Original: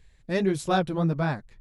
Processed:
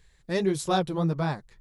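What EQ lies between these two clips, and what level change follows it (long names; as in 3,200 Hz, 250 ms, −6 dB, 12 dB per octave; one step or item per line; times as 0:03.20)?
graphic EQ with 15 bands 100 Hz −6 dB, 250 Hz −8 dB, 630 Hz −5 dB, 2,500 Hz −5 dB
dynamic equaliser 1,500 Hz, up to −7 dB, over −47 dBFS, Q 2.3
low-shelf EQ 81 Hz −8.5 dB
+3.5 dB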